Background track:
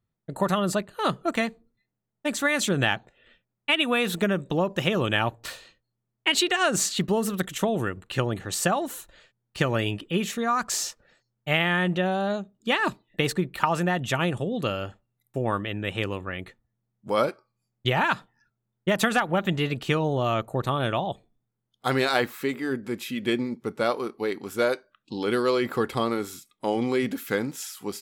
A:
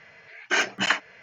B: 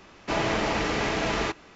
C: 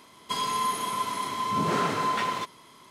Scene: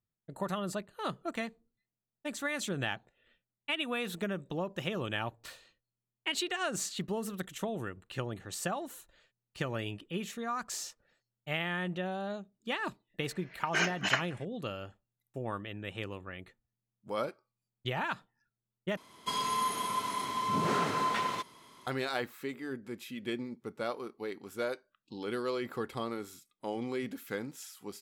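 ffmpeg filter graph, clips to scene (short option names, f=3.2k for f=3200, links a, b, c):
-filter_complex "[0:a]volume=-11dB[a];[1:a]asplit=2[b][c];[c]adelay=174.9,volume=-28dB,highshelf=f=4k:g=-3.94[d];[b][d]amix=inputs=2:normalize=0[e];[a]asplit=2[f][g];[f]atrim=end=18.974[h];[3:a]atrim=end=2.9,asetpts=PTS-STARTPTS,volume=-4dB[i];[g]atrim=start=21.866[j];[e]atrim=end=1.22,asetpts=PTS-STARTPTS,volume=-7dB,afade=t=in:d=0.004:c=hsin,afade=t=out:st=1.216:d=0.004:c=hsin,adelay=13230[k];[h][i]acrossfade=d=0.004:c1=hsin:c2=hsin[l];[l][j]acrossfade=d=0.004:c1=hsin:c2=hsin[m];[m][k]amix=inputs=2:normalize=0"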